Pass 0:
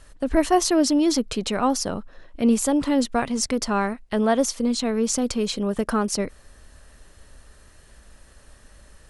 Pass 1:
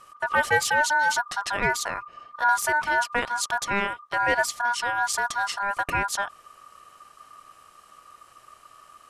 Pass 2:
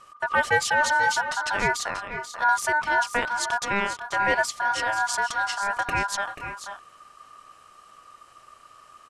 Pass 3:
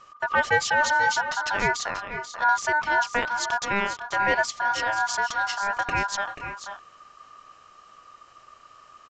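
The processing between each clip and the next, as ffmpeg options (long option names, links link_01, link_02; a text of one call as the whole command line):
ffmpeg -i in.wav -af "aeval=exprs='clip(val(0),-1,0.178)':channel_layout=same,aeval=exprs='val(0)*sin(2*PI*1200*n/s)':channel_layout=same" out.wav
ffmpeg -i in.wav -filter_complex "[0:a]lowpass=9000,asplit=2[link_01][link_02];[link_02]aecho=0:1:486|512:0.282|0.178[link_03];[link_01][link_03]amix=inputs=2:normalize=0" out.wav
ffmpeg -i in.wav -af "aresample=16000,aresample=44100" out.wav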